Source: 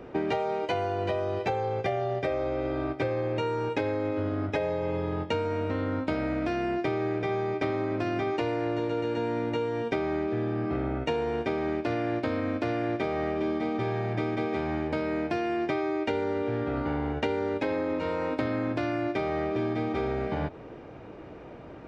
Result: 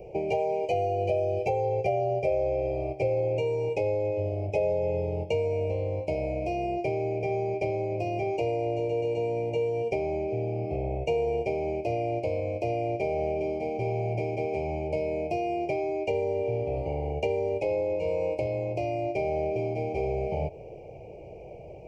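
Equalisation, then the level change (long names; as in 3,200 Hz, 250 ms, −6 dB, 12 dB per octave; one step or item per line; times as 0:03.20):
Chebyshev band-stop filter 1,000–2,300 Hz, order 4
phaser with its sweep stopped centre 990 Hz, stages 6
+4.5 dB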